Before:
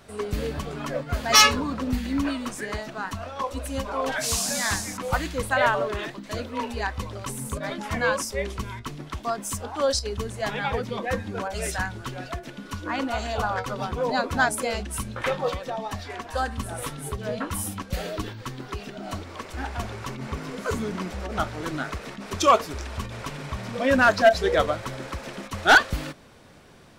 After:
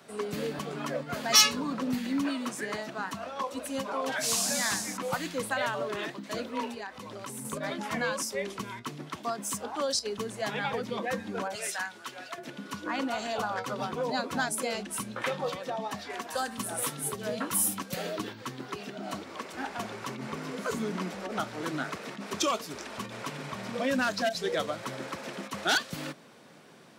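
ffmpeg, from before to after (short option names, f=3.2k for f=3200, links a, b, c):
-filter_complex "[0:a]asettb=1/sr,asplit=3[a][b][c];[a]atrim=end=6.694[d];[b]atrim=start=6.69:end=7.45,asetpts=PTS-STARTPTS,afade=t=in:d=0.004:c=qsin,afade=t=out:st=0.756:d=0.004:c=qsin,acompressor=threshold=-32dB:ratio=6:attack=3.2:release=140:knee=1:detection=peak[e];[c]atrim=start=7.446[f];[d][e]acrossfade=d=0.004:c1=hsin:c2=qsin[g];[g][f]acrossfade=d=0.004:c1=qsin:c2=hsin,asettb=1/sr,asplit=3[h][i][j];[h]atrim=end=11.554[k];[i]atrim=start=11.55:end=12.38,asetpts=PTS-STARTPTS,afade=t=in:d=0.004:c=qsin,afade=t=out:st=0.826:d=0.004:c=qsin,highpass=f=1k:p=1[l];[j]atrim=start=12.376[m];[k][l]acrossfade=d=0.004:c1=hsin:c2=qsin[n];[n][m]acrossfade=d=0.004:c1=qsin:c2=hsin,asettb=1/sr,asplit=3[o][p][q];[o]atrim=end=16.134[r];[p]atrim=start=16.13:end=17.94,asetpts=PTS-STARTPTS,afade=t=in:d=0.004:c=qsin,afade=t=out:st=1.806:d=0.004:c=qsin,highshelf=f=6.4k:g=10.5[s];[q]atrim=start=17.936[t];[r][s]acrossfade=d=0.004:c1=hsin:c2=qsin[u];[u][t]acrossfade=d=0.004:c1=qsin:c2=hsin,highpass=f=150:w=0.5412,highpass=f=150:w=1.3066,acrossover=split=220|3000[v][w][x];[w]acompressor=threshold=-27dB:ratio=4[y];[v][y][x]amix=inputs=3:normalize=0,volume=-2dB"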